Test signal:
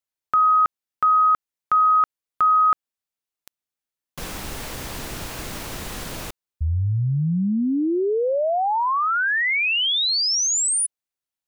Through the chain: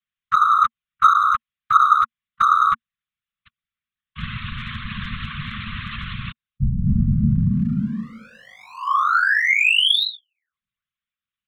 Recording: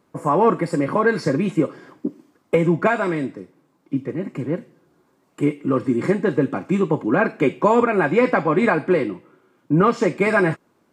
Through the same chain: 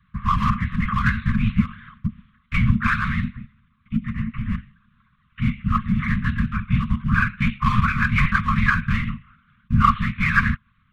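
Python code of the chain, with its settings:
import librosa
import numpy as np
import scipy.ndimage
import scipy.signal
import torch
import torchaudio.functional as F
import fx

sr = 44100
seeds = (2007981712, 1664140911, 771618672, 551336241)

p1 = fx.lpc_monotone(x, sr, seeds[0], pitch_hz=130.0, order=16)
p2 = np.clip(10.0 ** (19.5 / 20.0) * p1, -1.0, 1.0) / 10.0 ** (19.5 / 20.0)
p3 = p1 + F.gain(torch.from_numpy(p2), -5.0).numpy()
p4 = fx.whisperise(p3, sr, seeds[1])
p5 = scipy.signal.sosfilt(scipy.signal.ellip(4, 1.0, 40, [230.0, 1100.0], 'bandstop', fs=sr, output='sos'), p4)
y = F.gain(torch.from_numpy(p5), 1.5).numpy()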